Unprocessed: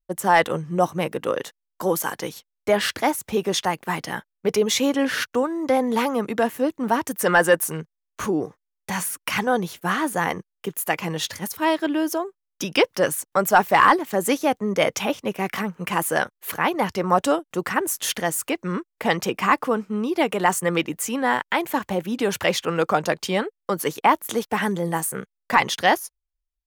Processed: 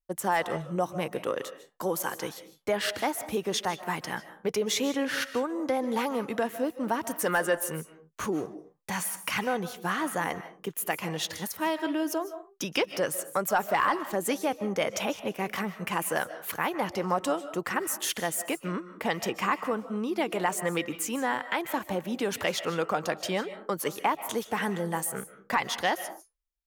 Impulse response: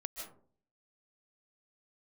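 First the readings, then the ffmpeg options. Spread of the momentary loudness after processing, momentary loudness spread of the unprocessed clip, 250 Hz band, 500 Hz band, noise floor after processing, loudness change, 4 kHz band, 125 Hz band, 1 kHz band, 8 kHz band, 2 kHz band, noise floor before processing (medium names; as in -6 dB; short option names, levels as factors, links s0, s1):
6 LU, 9 LU, -7.5 dB, -7.5 dB, -59 dBFS, -7.5 dB, -6.0 dB, -7.5 dB, -8.0 dB, -5.5 dB, -7.5 dB, -81 dBFS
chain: -filter_complex "[0:a]acompressor=threshold=0.0891:ratio=2,asplit=2[s0][s1];[1:a]atrim=start_sample=2205,afade=t=out:st=0.33:d=0.01,atrim=end_sample=14994,lowshelf=f=180:g=-10[s2];[s1][s2]afir=irnorm=-1:irlink=0,volume=0.631[s3];[s0][s3]amix=inputs=2:normalize=0,volume=0.422"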